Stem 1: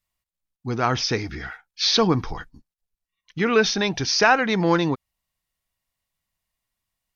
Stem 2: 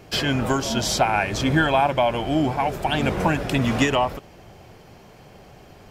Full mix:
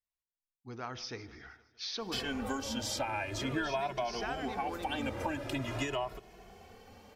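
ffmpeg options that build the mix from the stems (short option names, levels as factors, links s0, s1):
-filter_complex "[0:a]bandreject=f=71.57:t=h:w=4,bandreject=f=143.14:t=h:w=4,bandreject=f=214.71:t=h:w=4,bandreject=f=286.28:t=h:w=4,bandreject=f=357.85:t=h:w=4,bandreject=f=429.42:t=h:w=4,bandreject=f=500.99:t=h:w=4,bandreject=f=572.56:t=h:w=4,bandreject=f=644.13:t=h:w=4,volume=0.141,asplit=2[s0][s1];[s1]volume=0.0944[s2];[1:a]bandreject=f=60:t=h:w=6,bandreject=f=120:t=h:w=6,asplit=2[s3][s4];[s4]adelay=2.3,afreqshift=0.45[s5];[s3][s5]amix=inputs=2:normalize=1,adelay=2000,volume=0.631[s6];[s2]aecho=0:1:155|310|465|620|775|930|1085|1240|1395:1|0.59|0.348|0.205|0.121|0.0715|0.0422|0.0249|0.0147[s7];[s0][s6][s7]amix=inputs=3:normalize=0,equalizer=f=160:t=o:w=0.29:g=-14.5,acompressor=threshold=0.0141:ratio=2"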